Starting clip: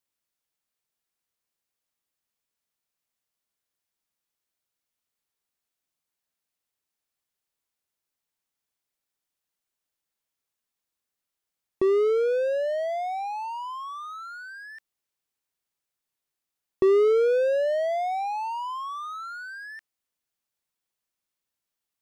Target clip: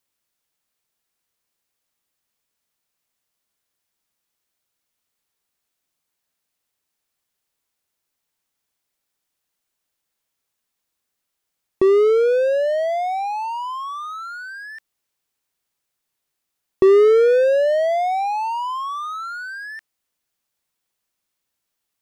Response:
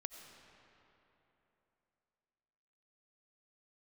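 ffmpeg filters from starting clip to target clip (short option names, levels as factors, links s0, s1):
-filter_complex "[0:a]asettb=1/sr,asplit=3[s0][s1][s2];[s0]atrim=end=16.854[s3];[s1]atrim=start=16.85:end=17.44,asetpts=PTS-STARTPTS,afade=t=in:d=0.004:c=qsin,afade=t=out:st=0.586:d=0.004:c=qsin,aeval=exprs='val(0)+0.00355*sin(2*PI*1800*n/s)':c=same[s4];[s2]atrim=start=17.436[s5];[s3][s4]acrossfade=d=0.004:c1=hsin:c2=qsin[s6];[s6][s5]acrossfade=d=0.004:c1=qsin:c2=hsin,volume=2.24"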